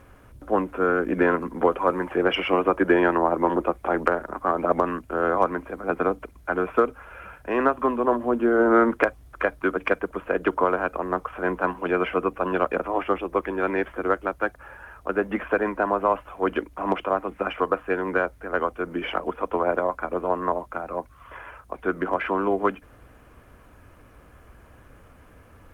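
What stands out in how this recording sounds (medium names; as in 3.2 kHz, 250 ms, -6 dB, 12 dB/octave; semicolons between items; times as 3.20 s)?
a quantiser's noise floor 12-bit, dither none; Opus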